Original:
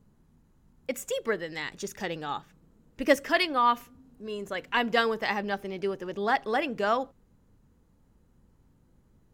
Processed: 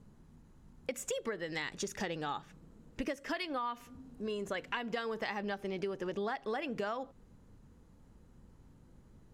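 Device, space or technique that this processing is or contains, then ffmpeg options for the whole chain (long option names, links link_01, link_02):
serial compression, leveller first: -af "acompressor=threshold=-28dB:ratio=3,acompressor=threshold=-38dB:ratio=5,lowpass=11000,volume=3.5dB"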